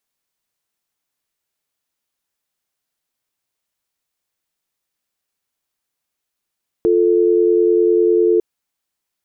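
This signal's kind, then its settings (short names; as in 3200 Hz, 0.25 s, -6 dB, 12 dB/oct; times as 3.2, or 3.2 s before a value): call progress tone dial tone, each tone -13.5 dBFS 1.55 s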